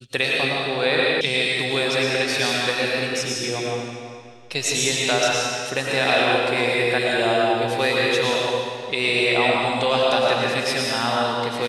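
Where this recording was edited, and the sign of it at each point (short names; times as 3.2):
1.21 sound cut off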